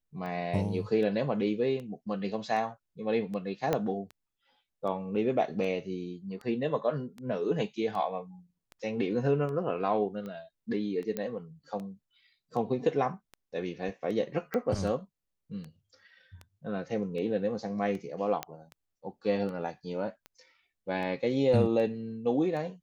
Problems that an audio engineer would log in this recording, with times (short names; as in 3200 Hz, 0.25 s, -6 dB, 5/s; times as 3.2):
tick 78 rpm -29 dBFS
3.73 pop -14 dBFS
11.17 pop -19 dBFS
14.54 pop -20 dBFS
18.43 pop -16 dBFS